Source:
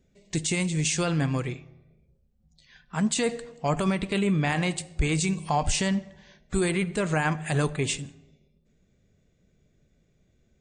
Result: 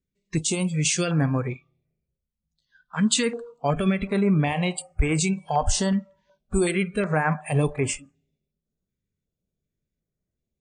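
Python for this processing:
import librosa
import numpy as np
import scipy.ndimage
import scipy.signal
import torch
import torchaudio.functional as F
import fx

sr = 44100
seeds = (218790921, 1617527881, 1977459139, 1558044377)

y = fx.noise_reduce_blind(x, sr, reduce_db=22)
y = fx.peak_eq(y, sr, hz=3500.0, db=7.0, octaves=1.2, at=(1.5, 3.16))
y = fx.filter_held_notch(y, sr, hz=2.7, low_hz=720.0, high_hz=3800.0)
y = F.gain(torch.from_numpy(y), 4.0).numpy()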